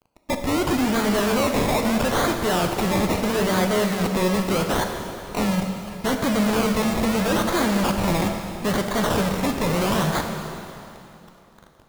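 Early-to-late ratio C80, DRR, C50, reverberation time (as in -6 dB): 5.5 dB, 3.5 dB, 5.0 dB, 2.9 s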